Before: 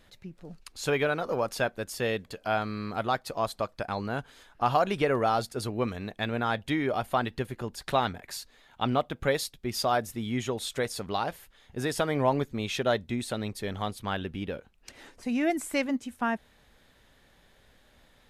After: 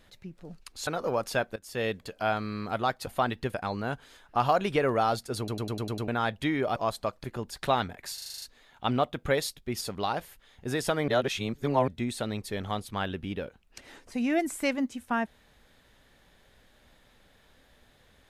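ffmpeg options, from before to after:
-filter_complex "[0:a]asplit=24[s0][s1][s2][s3][s4][s5][s6][s7][s8][s9][s10][s11][s12][s13][s14][s15][s16][s17][s18][s19][s20][s21][s22][s23];[s0]atrim=end=0.872[s24];[s1]atrim=start=1.118:end=1.81,asetpts=PTS-STARTPTS,afade=t=out:st=0.688:d=0.004:c=hsin:silence=0.1[s25];[s2]atrim=start=1.81:end=3.322,asetpts=PTS-STARTPTS,afade=t=in:d=0.31:silence=0.1[s26];[s3]atrim=start=7.018:end=7.492[s27];[s4]atrim=start=3.798:end=5.742[s28];[s5]atrim=start=5.638:end=5.742[s29];[s6]atrim=start=5.638:end=5.742[s30];[s7]atrim=start=5.638:end=5.742[s31];[s8]atrim=start=5.638:end=5.742[s32];[s9]atrim=start=5.638:end=5.742[s33];[s10]atrim=start=5.638:end=5.742[s34];[s11]atrim=start=6.338:end=7.022[s35];[s12]atrim=start=3.318:end=3.802[s36];[s13]atrim=start=7.488:end=8.432[s37];[s14]atrim=start=8.388:end=8.432[s38];[s15]atrim=start=8.388:end=8.432[s39];[s16]atrim=start=8.388:end=8.432[s40];[s17]atrim=start=8.388:end=8.432[s41];[s18]atrim=start=8.388:end=8.432[s42];[s19]atrim=start=8.388:end=8.432[s43];[s20]atrim=start=8.388:end=9.782[s44];[s21]atrim=start=10.918:end=12.192[s45];[s22]atrim=start=12.188:end=12.992,asetpts=PTS-STARTPTS,areverse[s46];[s23]atrim=start=12.988[s47];[s25][s26]concat=n=2:v=0:a=1[s48];[s24][s48]acrossfade=d=0.004:c1=hsin:c2=hsin[s49];[s49][s27]acrossfade=d=0.004:c1=hsin:c2=hsin[s50];[s50][s28]acrossfade=d=0.004:c1=hsin:c2=hsin[s51];[s51][s29]acrossfade=d=0.004:c1=hsin:c2=hsin[s52];[s52][s30]acrossfade=d=0.004:c1=hsin:c2=hsin[s53];[s53][s31]acrossfade=d=0.004:c1=hsin:c2=hsin[s54];[s54][s32]acrossfade=d=0.004:c1=hsin:c2=hsin[s55];[s55][s33]acrossfade=d=0.004:c1=hsin:c2=hsin[s56];[s56][s34]acrossfade=d=0.004:c1=hsin:c2=hsin[s57];[s57][s35]acrossfade=d=0.004:c1=hsin:c2=hsin[s58];[s58][s36]acrossfade=d=0.004:c1=hsin:c2=hsin[s59];[s59][s37]acrossfade=d=0.004:c1=hsin:c2=hsin[s60];[s60][s38]acrossfade=d=0.004:c1=hsin:c2=hsin[s61];[s61][s39]acrossfade=d=0.004:c1=hsin:c2=hsin[s62];[s62][s40]acrossfade=d=0.004:c1=hsin:c2=hsin[s63];[s63][s41]acrossfade=d=0.004:c1=hsin:c2=hsin[s64];[s64][s42]acrossfade=d=0.004:c1=hsin:c2=hsin[s65];[s65][s43]acrossfade=d=0.004:c1=hsin:c2=hsin[s66];[s66][s44]acrossfade=d=0.004:c1=hsin:c2=hsin[s67];[s67][s45]acrossfade=d=0.004:c1=hsin:c2=hsin[s68];[s68][s46]acrossfade=d=0.004:c1=hsin:c2=hsin[s69];[s69][s47]acrossfade=d=0.004:c1=hsin:c2=hsin"

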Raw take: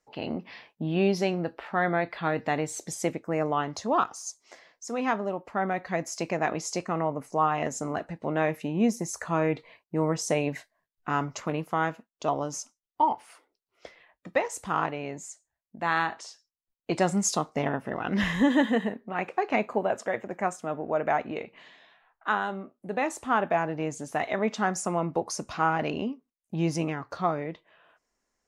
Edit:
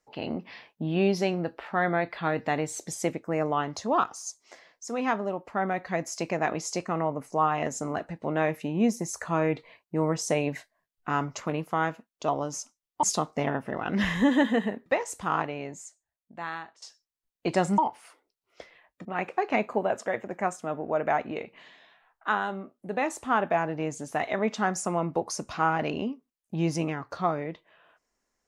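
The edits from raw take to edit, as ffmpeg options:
-filter_complex "[0:a]asplit=6[s0][s1][s2][s3][s4][s5];[s0]atrim=end=13.032[s6];[s1]atrim=start=17.218:end=19.052[s7];[s2]atrim=start=14.298:end=16.26,asetpts=PTS-STARTPTS,afade=t=out:st=0.612:d=1.35:silence=0.11885[s8];[s3]atrim=start=16.26:end=17.222,asetpts=PTS-STARTPTS,afade=t=in:d=0.004:c=hsin:silence=0.11885[s9];[s4]atrim=start=13.028:end=14.302[s10];[s5]atrim=start=19.048[s11];[s6][s7]acrossfade=d=0.004:c1=hsin:c2=hsin[s12];[s8][s9]concat=n=2:v=0:a=1[s13];[s12][s13]acrossfade=d=0.004:c1=hsin:c2=hsin[s14];[s14][s10]acrossfade=d=0.004:c1=hsin:c2=hsin[s15];[s15][s11]acrossfade=d=0.004:c1=hsin:c2=hsin"

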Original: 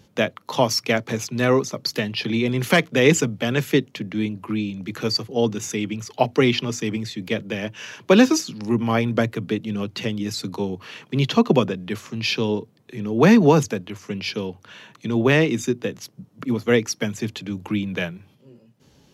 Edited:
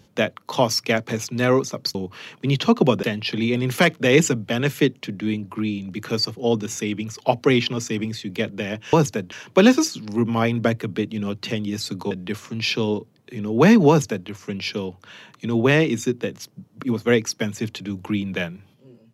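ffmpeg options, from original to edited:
-filter_complex "[0:a]asplit=6[s0][s1][s2][s3][s4][s5];[s0]atrim=end=1.952[s6];[s1]atrim=start=10.638:end=11.722[s7];[s2]atrim=start=1.948:end=7.852[s8];[s3]atrim=start=13.498:end=13.892[s9];[s4]atrim=start=7.848:end=10.642[s10];[s5]atrim=start=11.718[s11];[s6][s7]acrossfade=d=0.004:c1=hsin:c2=hsin[s12];[s12][s8]acrossfade=d=0.004:c1=hsin:c2=hsin[s13];[s13][s9]acrossfade=d=0.004:c1=hsin:c2=hsin[s14];[s14][s10]acrossfade=d=0.004:c1=hsin:c2=hsin[s15];[s15][s11]acrossfade=d=0.004:c1=hsin:c2=hsin"

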